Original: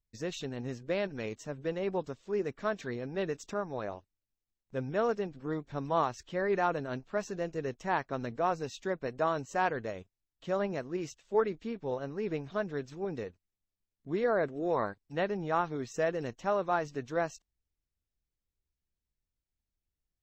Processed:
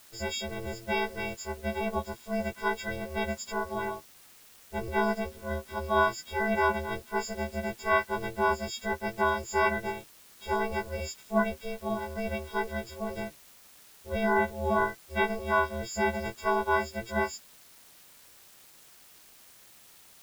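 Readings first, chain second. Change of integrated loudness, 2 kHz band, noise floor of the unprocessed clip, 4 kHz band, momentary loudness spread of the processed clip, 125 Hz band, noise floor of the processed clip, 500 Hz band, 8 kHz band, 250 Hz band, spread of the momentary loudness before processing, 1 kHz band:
+3.5 dB, +9.0 dB, below −85 dBFS, +8.0 dB, 10 LU, +1.5 dB, −55 dBFS, +1.0 dB, +8.5 dB, +2.5 dB, 8 LU, +5.0 dB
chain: every partial snapped to a pitch grid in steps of 6 semitones
high-shelf EQ 4,600 Hz −8.5 dB
in parallel at −4 dB: bit-depth reduction 8 bits, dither triangular
on the sum: ring modulation 230 Hz

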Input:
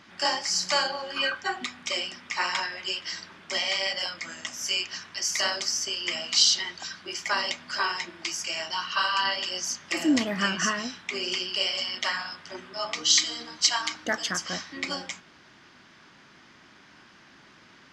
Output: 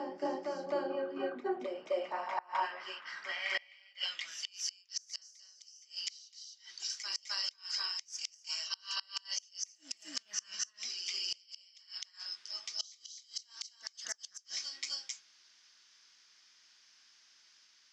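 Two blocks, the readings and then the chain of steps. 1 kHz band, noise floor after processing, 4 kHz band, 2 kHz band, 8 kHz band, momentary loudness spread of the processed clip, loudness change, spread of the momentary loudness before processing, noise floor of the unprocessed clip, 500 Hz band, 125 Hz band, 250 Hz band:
−10.5 dB, −66 dBFS, −12.5 dB, −15.0 dB, −12.0 dB, 10 LU, −11.5 dB, 11 LU, −55 dBFS, −4.5 dB, below −20 dB, −14.5 dB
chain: backwards echo 258 ms −4 dB
band-pass filter sweep 340 Hz → 5,700 Hz, 0:01.36–0:04.92
gate with flip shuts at −23 dBFS, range −28 dB
dynamic equaliser 470 Hz, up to +6 dB, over −54 dBFS, Q 0.77

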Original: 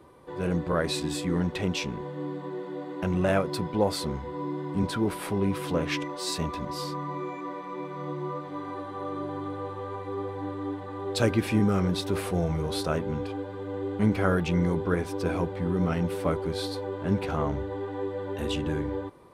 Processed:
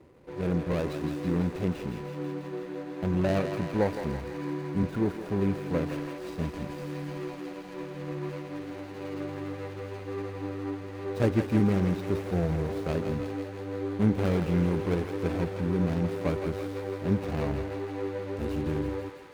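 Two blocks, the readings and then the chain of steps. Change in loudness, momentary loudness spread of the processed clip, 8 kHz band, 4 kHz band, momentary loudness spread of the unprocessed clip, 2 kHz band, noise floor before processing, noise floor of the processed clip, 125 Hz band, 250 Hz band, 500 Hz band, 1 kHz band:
−1.0 dB, 11 LU, below −10 dB, −10.5 dB, 10 LU, −4.0 dB, −39 dBFS, −41 dBFS, 0.0 dB, −0.5 dB, −1.5 dB, −5.5 dB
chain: running median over 41 samples
feedback echo with a high-pass in the loop 165 ms, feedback 78%, high-pass 710 Hz, level −6 dB

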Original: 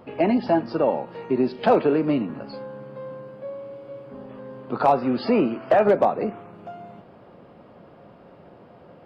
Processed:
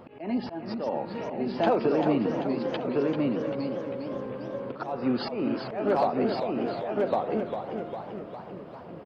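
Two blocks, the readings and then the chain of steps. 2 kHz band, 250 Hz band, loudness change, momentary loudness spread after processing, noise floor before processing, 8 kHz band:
−4.5 dB, −3.0 dB, −7.0 dB, 11 LU, −49 dBFS, can't be measured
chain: single-tap delay 1,107 ms −4 dB
downward compressor 3 to 1, threshold −22 dBFS, peak gain reduction 7.5 dB
volume swells 217 ms
feedback echo with a swinging delay time 397 ms, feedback 61%, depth 177 cents, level −7 dB

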